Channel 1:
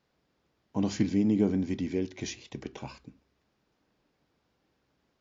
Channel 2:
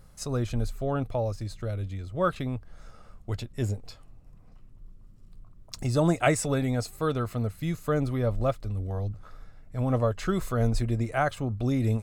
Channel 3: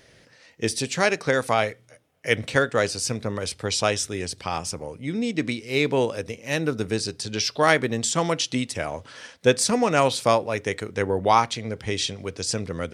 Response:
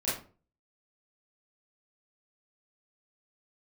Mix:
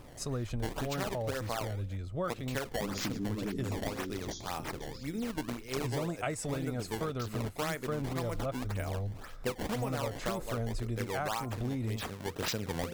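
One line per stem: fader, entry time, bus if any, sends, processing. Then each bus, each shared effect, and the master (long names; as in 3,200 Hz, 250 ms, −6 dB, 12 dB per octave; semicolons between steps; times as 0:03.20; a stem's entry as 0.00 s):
−8.0 dB, 2.05 s, no send, brick-wall band-stop 460–3,200 Hz; level that may fall only so fast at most 55 dB per second
−2.5 dB, 0.00 s, no send, no processing
+2.5 dB, 0.00 s, no send, hum removal 173.6 Hz, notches 8; sample-and-hold swept by an LFO 20×, swing 160% 1.9 Hz; automatic ducking −11 dB, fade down 1.25 s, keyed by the second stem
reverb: not used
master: downward compressor, threshold −31 dBFS, peak gain reduction 11 dB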